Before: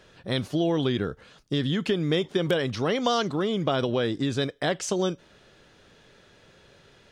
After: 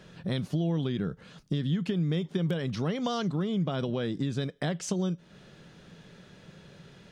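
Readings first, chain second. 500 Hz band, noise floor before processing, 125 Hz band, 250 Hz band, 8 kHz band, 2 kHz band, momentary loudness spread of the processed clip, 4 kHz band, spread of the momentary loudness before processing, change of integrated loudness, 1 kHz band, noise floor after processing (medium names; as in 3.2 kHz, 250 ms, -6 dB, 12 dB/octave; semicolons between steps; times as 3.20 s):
-8.0 dB, -57 dBFS, +1.0 dB, -2.5 dB, -5.5 dB, -9.0 dB, 5 LU, -9.0 dB, 6 LU, -4.0 dB, -8.5 dB, -55 dBFS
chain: peaking EQ 170 Hz +14 dB 0.79 oct; compression 2.5:1, threshold -31 dBFS, peak gain reduction 12.5 dB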